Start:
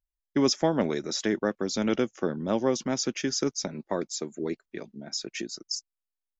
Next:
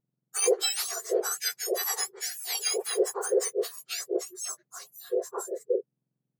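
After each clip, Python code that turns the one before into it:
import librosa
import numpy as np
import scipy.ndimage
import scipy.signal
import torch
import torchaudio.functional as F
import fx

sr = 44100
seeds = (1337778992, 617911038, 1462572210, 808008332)

y = fx.octave_mirror(x, sr, pivot_hz=1600.0)
y = y * 10.0 ** (1.5 / 20.0)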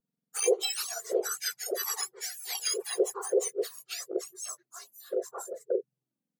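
y = fx.env_flanger(x, sr, rest_ms=4.3, full_db=-22.0)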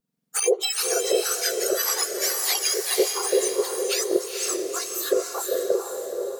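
y = fx.recorder_agc(x, sr, target_db=-18.0, rise_db_per_s=19.0, max_gain_db=30)
y = fx.echo_diffused(y, sr, ms=478, feedback_pct=40, wet_db=-4)
y = y * 10.0 ** (4.0 / 20.0)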